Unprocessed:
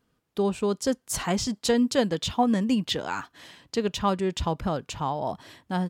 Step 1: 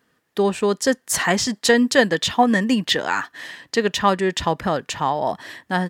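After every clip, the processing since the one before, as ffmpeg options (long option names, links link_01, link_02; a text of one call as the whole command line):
ffmpeg -i in.wav -af "highpass=frequency=270:poles=1,equalizer=frequency=1800:width_type=o:width=0.24:gain=12,volume=8dB" out.wav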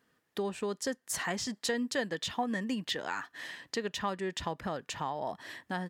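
ffmpeg -i in.wav -af "acompressor=threshold=-30dB:ratio=2,volume=-7dB" out.wav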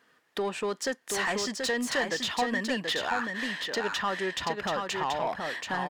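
ffmpeg -i in.wav -filter_complex "[0:a]asplit=2[link_01][link_02];[link_02]highpass=frequency=720:poles=1,volume=16dB,asoftclip=type=tanh:threshold=-19.5dB[link_03];[link_01][link_03]amix=inputs=2:normalize=0,lowpass=frequency=4100:poles=1,volume=-6dB,aecho=1:1:731:0.596" out.wav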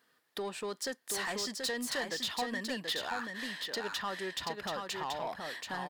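ffmpeg -i in.wav -af "aexciter=amount=2:drive=4.1:freq=3700,volume=-7.5dB" out.wav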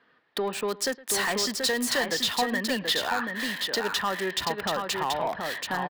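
ffmpeg -i in.wav -filter_complex "[0:a]aecho=1:1:112:0.0944,acrossover=split=260|3600[link_01][link_02][link_03];[link_03]acrusher=bits=7:mix=0:aa=0.000001[link_04];[link_01][link_02][link_04]amix=inputs=3:normalize=0,volume=9dB" out.wav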